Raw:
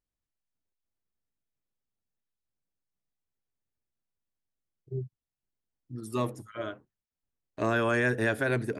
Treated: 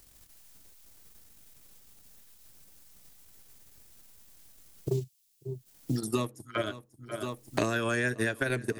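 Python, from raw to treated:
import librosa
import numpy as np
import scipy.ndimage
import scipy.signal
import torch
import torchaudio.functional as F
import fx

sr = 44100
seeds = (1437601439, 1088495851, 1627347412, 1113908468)

y = fx.transient(x, sr, attack_db=6, sustain_db=-11)
y = fx.high_shelf(y, sr, hz=4500.0, db=11.0)
y = fx.echo_feedback(y, sr, ms=540, feedback_pct=58, wet_db=-23.5)
y = fx.dynamic_eq(y, sr, hz=790.0, q=0.86, threshold_db=-39.0, ratio=4.0, max_db=-4)
y = fx.band_squash(y, sr, depth_pct=100)
y = y * 10.0 ** (-2.0 / 20.0)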